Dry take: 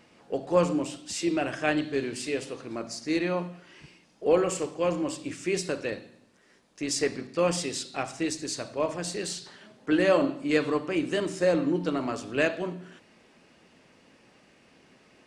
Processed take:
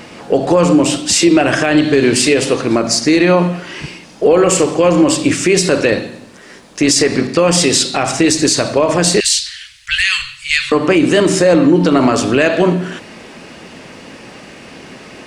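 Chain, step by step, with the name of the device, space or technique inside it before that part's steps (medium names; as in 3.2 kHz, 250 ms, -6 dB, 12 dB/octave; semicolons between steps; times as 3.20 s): 9.20–10.72 s: inverse Chebyshev band-stop 250–580 Hz, stop band 80 dB; loud club master (compression 3:1, threshold -28 dBFS, peak gain reduction 9 dB; hard clipper -16.5 dBFS, distortion -51 dB; loudness maximiser +24.5 dB); trim -1 dB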